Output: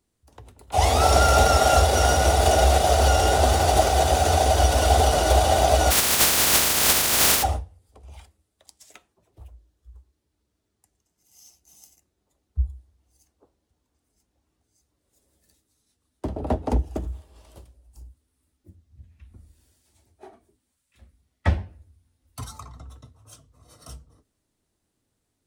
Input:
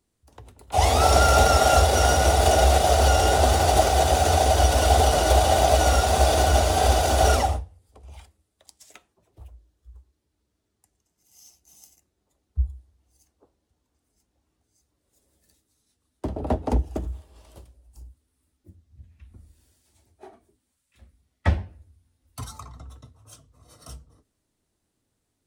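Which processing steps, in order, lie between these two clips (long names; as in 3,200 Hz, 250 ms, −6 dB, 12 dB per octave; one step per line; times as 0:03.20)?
0:05.90–0:07.42: compressing power law on the bin magnitudes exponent 0.11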